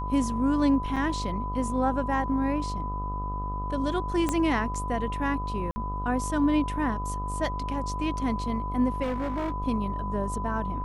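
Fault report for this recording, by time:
buzz 50 Hz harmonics 26 -33 dBFS
whine 1 kHz -33 dBFS
0.96–0.97 s: dropout 6.2 ms
4.29 s: pop -13 dBFS
5.71–5.76 s: dropout 50 ms
9.02–9.52 s: clipped -25.5 dBFS

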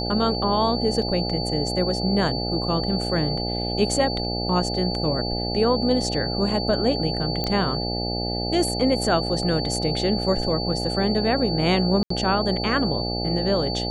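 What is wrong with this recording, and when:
buzz 60 Hz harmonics 14 -28 dBFS
whine 4.5 kHz -29 dBFS
1.02 s: dropout 3.8 ms
7.44 s: pop -12 dBFS
12.03–12.10 s: dropout 74 ms

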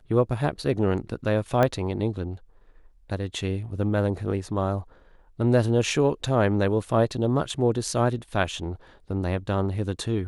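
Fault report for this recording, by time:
1.63 s: pop -10 dBFS

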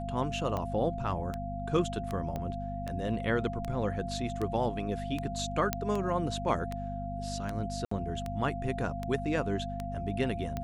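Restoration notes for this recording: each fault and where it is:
hum 50 Hz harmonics 5 -38 dBFS
tick 78 rpm -21 dBFS
whine 690 Hz -38 dBFS
2.36 s: pop -23 dBFS
5.73 s: pop -11 dBFS
7.85–7.91 s: dropout 64 ms

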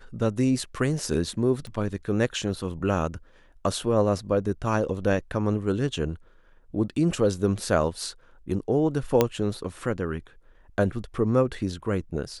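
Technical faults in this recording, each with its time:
1.67 s: pop -26 dBFS
9.21 s: pop -6 dBFS

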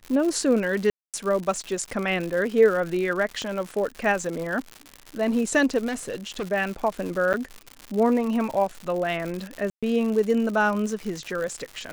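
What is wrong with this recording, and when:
crackle 170 per s -29 dBFS
0.90–1.14 s: dropout 237 ms
3.42 s: pop -18 dBFS
5.87–6.43 s: clipped -25 dBFS
7.33–7.34 s: dropout 8.7 ms
9.70–9.83 s: dropout 126 ms

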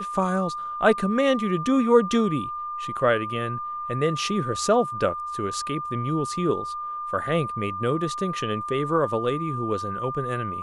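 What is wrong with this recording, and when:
whine 1.2 kHz -29 dBFS

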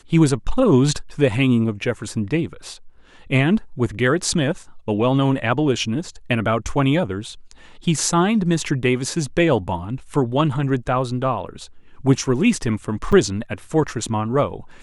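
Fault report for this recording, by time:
13.12–13.13 s: dropout 5.7 ms

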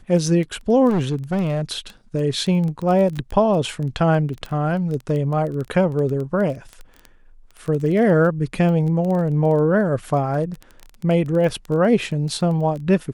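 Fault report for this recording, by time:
crackle 12 per s -25 dBFS
0.89–1.72 s: clipped -16.5 dBFS

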